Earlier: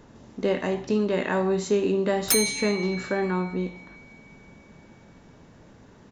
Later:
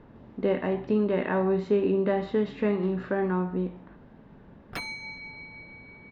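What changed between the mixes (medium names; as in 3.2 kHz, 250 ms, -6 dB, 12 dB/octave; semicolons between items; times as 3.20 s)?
background: entry +2.45 s; master: add distance through air 410 m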